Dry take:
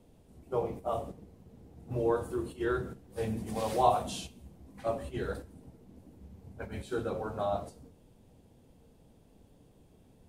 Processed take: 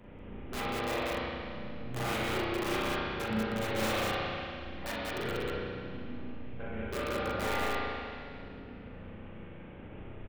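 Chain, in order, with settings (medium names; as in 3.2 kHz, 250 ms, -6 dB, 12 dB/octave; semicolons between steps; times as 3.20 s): CVSD coder 16 kbps; expander -58 dBFS; reverb removal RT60 0.69 s; integer overflow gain 27.5 dB; upward compressor, threshold -36 dBFS; loudspeakers at several distances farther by 14 m -9 dB, 65 m -2 dB; spring tank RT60 2.3 s, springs 32/37 ms, chirp 30 ms, DRR -8.5 dB; trim -7.5 dB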